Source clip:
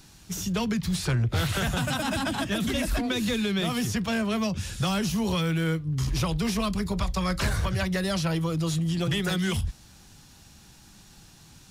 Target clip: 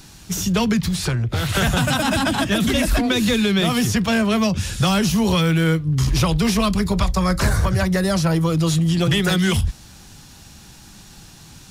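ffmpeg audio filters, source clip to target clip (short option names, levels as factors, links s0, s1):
-filter_complex "[0:a]asettb=1/sr,asplit=3[s0][s1][s2];[s0]atrim=end=0.844[s3];[s1]atrim=start=0.84:end=1.55,asetpts=PTS-STARTPTS,afade=t=in:d=0.004:c=qsin,afade=t=out:st=0.706:d=0.004:c=qsin,acompressor=threshold=0.0447:ratio=6[s4];[s2]atrim=start=1.546[s5];[s3][s4]acrossfade=d=0.004:c1=hsin:c2=qsin[s6];[s6][s5]acrossfade=d=0.004:c1=qsin:c2=hsin,asettb=1/sr,asplit=3[s7][s8][s9];[s7]atrim=end=7.114[s10];[s8]atrim=start=7.11:end=8.45,asetpts=PTS-STARTPTS,afade=t=in:d=0.004:c=qsin,afade=t=out:st=1.336:d=0.004:c=qsin,equalizer=f=3000:t=o:w=1:g=-8[s11];[s9]atrim=start=8.446[s12];[s10][s11]acrossfade=d=0.004:c1=hsin:c2=qsin[s13];[s13][s12]acrossfade=d=0.004:c1=qsin:c2=hsin,volume=2.66"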